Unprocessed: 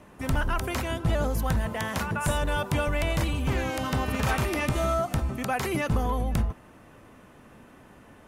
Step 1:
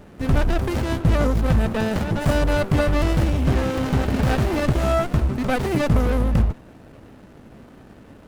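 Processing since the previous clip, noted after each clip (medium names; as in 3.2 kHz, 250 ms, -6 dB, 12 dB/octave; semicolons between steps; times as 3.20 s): sliding maximum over 33 samples; trim +8 dB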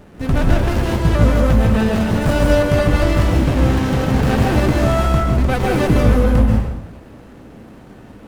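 plate-style reverb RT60 0.85 s, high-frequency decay 0.85×, pre-delay 120 ms, DRR -1 dB; trim +1.5 dB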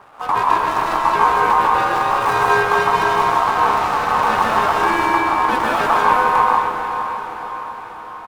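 speakerphone echo 260 ms, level -6 dB; ring modulator 1 kHz; echo that smears into a reverb 537 ms, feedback 53%, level -9 dB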